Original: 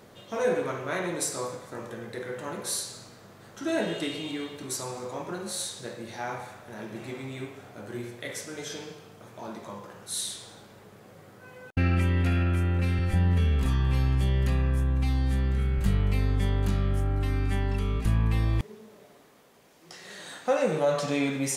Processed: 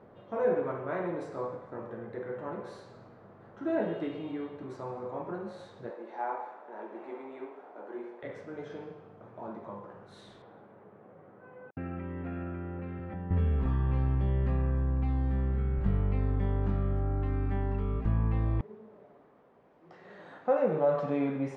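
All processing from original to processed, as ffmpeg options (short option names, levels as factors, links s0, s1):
-filter_complex "[0:a]asettb=1/sr,asplit=3[s0][s1][s2];[s0]atrim=end=5.904[s3];[s1]atrim=start=5.9:end=8.23,asetpts=PTS-STARTPTS,afade=t=in:d=0.004:c=qsin,afade=t=out:st=2.326:d=0.004:c=qsin,highpass=f=300:w=0.5412,highpass=f=300:w=1.3066,equalizer=f=910:t=o:w=0.33:g=7[s4];[s2]atrim=start=8.226[s5];[s3][s4]acrossfade=d=0.004:c1=hsin:c2=qsin[s6];[s6][s5]acrossfade=d=0.004:c1=qsin:c2=hsin,asettb=1/sr,asplit=3[s7][s8][s9];[s7]atrim=end=10.424[s10];[s8]atrim=start=10.42:end=13.31,asetpts=PTS-STARTPTS,afade=t=in:d=0.004:c=qsin,afade=t=out:st=2.886:d=0.004:c=qsin,acompressor=threshold=0.0398:ratio=2.5:attack=3.2:release=140:knee=1:detection=peak,highpass=140,lowpass=3000[s11];[s9]atrim=start=13.306[s12];[s10][s11]acrossfade=d=0.004:c1=hsin:c2=qsin[s13];[s13][s12]acrossfade=d=0.004:c1=qsin:c2=hsin,lowpass=1100,lowshelf=f=320:g=-4"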